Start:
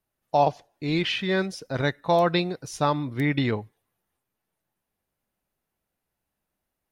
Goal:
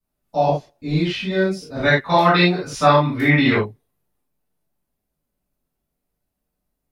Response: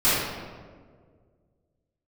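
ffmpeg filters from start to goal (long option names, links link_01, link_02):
-filter_complex "[0:a]asetnsamples=nb_out_samples=441:pad=0,asendcmd='1.83 equalizer g 8;3.56 equalizer g -8',equalizer=frequency=1800:width_type=o:width=2.8:gain=-6[link_01];[1:a]atrim=start_sample=2205,atrim=end_sample=4410[link_02];[link_01][link_02]afir=irnorm=-1:irlink=0,volume=-11dB"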